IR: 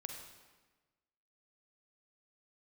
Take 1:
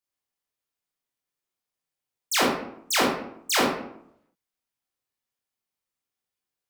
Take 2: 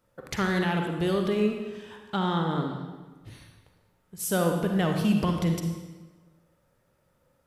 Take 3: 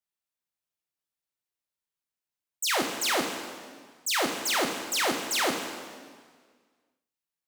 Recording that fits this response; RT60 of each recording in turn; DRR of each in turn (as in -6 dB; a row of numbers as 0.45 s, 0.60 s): 2; 0.75 s, 1.3 s, 1.7 s; -4.5 dB, 3.0 dB, 2.5 dB